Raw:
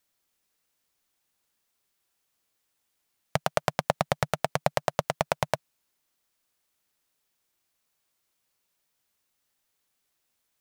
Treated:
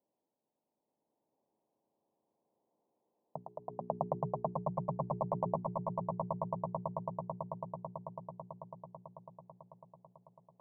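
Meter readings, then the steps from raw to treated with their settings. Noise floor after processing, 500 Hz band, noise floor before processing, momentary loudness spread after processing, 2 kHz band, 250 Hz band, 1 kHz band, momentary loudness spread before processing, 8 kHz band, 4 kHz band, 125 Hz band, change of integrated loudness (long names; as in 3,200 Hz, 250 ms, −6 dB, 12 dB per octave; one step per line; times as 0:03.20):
below −85 dBFS, −6.5 dB, −78 dBFS, 18 LU, below −40 dB, −1.0 dB, −6.0 dB, 4 LU, below −35 dB, below −40 dB, −3.5 dB, −10.0 dB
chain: low-pass that shuts in the quiet parts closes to 700 Hz, open at −29.5 dBFS
high-pass filter 210 Hz 12 dB per octave
mains-hum notches 60/120/180/240/300/360/420 Hz
brickwall limiter −12 dBFS, peak gain reduction 8 dB
transient designer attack −7 dB, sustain +2 dB
elliptic low-pass filter 980 Hz, stop band 40 dB
amplitude tremolo 0.72 Hz, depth 80%
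echo that builds up and dies away 110 ms, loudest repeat 8, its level −4 dB
level +7.5 dB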